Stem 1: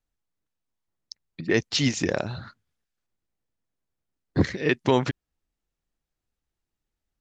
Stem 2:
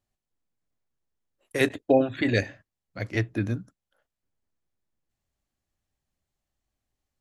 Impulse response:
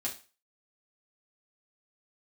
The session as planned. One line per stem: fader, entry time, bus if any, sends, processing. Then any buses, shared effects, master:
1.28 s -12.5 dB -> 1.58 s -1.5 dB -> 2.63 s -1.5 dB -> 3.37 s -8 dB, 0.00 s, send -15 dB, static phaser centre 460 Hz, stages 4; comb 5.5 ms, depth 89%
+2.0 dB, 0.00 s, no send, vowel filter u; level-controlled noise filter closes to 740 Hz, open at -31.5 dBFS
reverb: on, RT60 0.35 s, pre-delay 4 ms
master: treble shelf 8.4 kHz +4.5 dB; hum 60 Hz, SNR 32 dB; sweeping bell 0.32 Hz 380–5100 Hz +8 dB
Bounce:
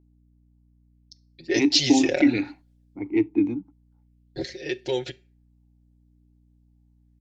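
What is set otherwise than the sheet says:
stem 2 +2.0 dB -> +11.5 dB; master: missing treble shelf 8.4 kHz +4.5 dB

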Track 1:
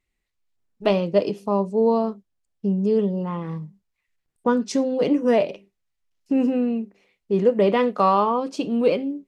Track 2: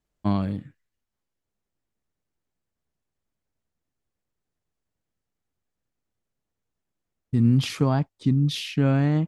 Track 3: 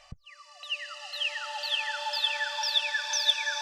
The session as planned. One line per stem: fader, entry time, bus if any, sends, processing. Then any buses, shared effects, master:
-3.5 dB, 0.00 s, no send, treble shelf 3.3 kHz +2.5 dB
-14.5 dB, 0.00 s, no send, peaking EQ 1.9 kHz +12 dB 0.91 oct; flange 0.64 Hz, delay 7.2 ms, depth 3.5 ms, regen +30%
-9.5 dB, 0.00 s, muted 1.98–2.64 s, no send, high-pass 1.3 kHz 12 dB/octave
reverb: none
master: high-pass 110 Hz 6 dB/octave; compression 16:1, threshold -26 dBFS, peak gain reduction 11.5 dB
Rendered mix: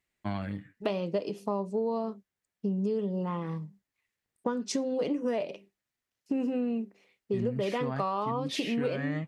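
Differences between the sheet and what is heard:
stem 2 -14.5 dB -> -4.0 dB; stem 3: muted

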